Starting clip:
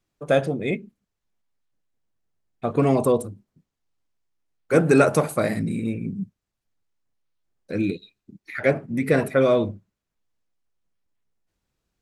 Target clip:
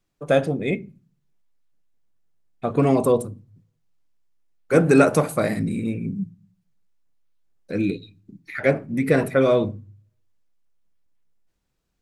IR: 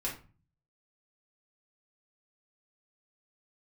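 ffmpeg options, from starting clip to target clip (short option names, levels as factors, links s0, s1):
-filter_complex "[0:a]asplit=2[s0][s1];[1:a]atrim=start_sample=2205,lowshelf=f=280:g=11.5[s2];[s1][s2]afir=irnorm=-1:irlink=0,volume=0.0891[s3];[s0][s3]amix=inputs=2:normalize=0"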